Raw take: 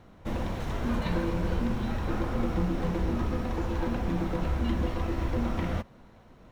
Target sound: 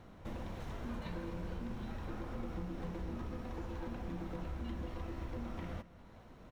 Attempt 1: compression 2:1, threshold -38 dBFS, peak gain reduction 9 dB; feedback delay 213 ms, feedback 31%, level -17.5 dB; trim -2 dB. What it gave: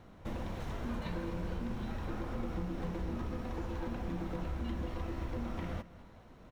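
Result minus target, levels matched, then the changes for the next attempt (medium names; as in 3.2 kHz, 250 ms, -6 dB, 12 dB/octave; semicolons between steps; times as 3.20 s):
compression: peak gain reduction -4 dB
change: compression 2:1, threshold -46 dBFS, peak gain reduction 13 dB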